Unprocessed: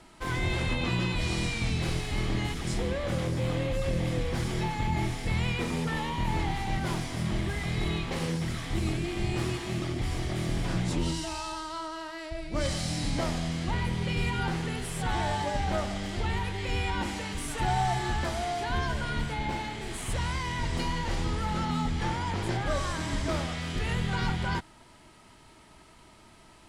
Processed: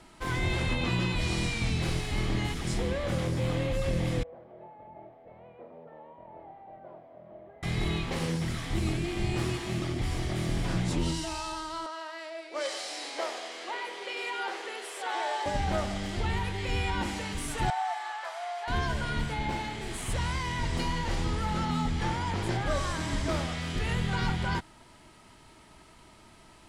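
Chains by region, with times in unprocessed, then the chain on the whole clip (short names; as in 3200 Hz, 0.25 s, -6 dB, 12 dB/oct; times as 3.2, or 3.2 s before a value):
4.23–7.63 band-pass 610 Hz, Q 6.6 + air absorption 340 m
11.86–15.46 steep high-pass 380 Hz + high shelf 8400 Hz -8 dB
17.7–18.68 inverse Chebyshev high-pass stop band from 270 Hz, stop band 50 dB + high shelf 2600 Hz -11.5 dB
whole clip: dry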